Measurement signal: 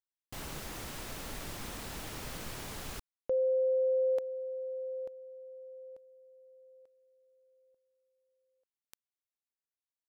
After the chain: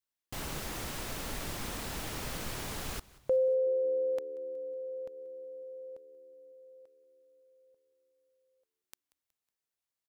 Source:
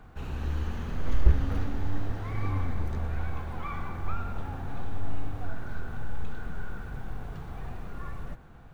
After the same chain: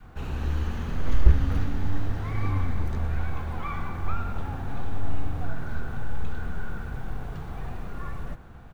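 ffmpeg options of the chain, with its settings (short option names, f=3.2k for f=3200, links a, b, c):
-filter_complex "[0:a]adynamicequalizer=threshold=0.00794:dfrequency=550:dqfactor=0.82:tfrequency=550:tqfactor=0.82:attack=5:release=100:ratio=0.375:range=3.5:mode=cutabove:tftype=bell,asplit=4[a][b][c][d];[b]adelay=184,afreqshift=-76,volume=-21.5dB[e];[c]adelay=368,afreqshift=-152,volume=-27.9dB[f];[d]adelay=552,afreqshift=-228,volume=-34.3dB[g];[a][e][f][g]amix=inputs=4:normalize=0,volume=3.5dB"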